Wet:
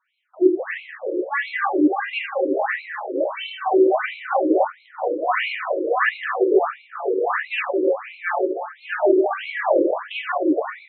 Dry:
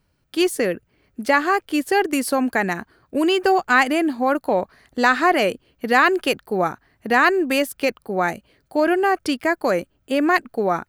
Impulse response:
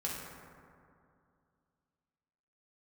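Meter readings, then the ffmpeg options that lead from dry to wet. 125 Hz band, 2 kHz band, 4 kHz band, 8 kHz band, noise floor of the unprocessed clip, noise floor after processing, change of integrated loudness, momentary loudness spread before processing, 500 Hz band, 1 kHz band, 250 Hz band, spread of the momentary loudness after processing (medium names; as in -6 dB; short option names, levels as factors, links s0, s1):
under -25 dB, -4.5 dB, -6.5 dB, under -40 dB, -67 dBFS, -52 dBFS, -2.0 dB, 9 LU, +1.0 dB, -3.5 dB, -1.5 dB, 9 LU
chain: -filter_complex "[0:a]alimiter=limit=0.188:level=0:latency=1:release=99[s0];[1:a]atrim=start_sample=2205,asetrate=33957,aresample=44100[s1];[s0][s1]afir=irnorm=-1:irlink=0,afftfilt=real='re*between(b*sr/1024,390*pow(3000/390,0.5+0.5*sin(2*PI*1.5*pts/sr))/1.41,390*pow(3000/390,0.5+0.5*sin(2*PI*1.5*pts/sr))*1.41)':imag='im*between(b*sr/1024,390*pow(3000/390,0.5+0.5*sin(2*PI*1.5*pts/sr))/1.41,390*pow(3000/390,0.5+0.5*sin(2*PI*1.5*pts/sr))*1.41)':win_size=1024:overlap=0.75,volume=1.68"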